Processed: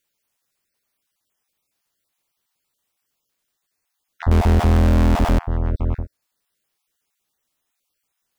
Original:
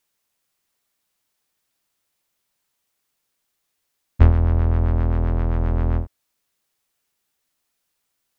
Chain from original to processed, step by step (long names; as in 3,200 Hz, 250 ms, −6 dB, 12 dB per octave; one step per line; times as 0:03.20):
time-frequency cells dropped at random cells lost 22%
0:04.31–0:05.39: power curve on the samples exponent 0.35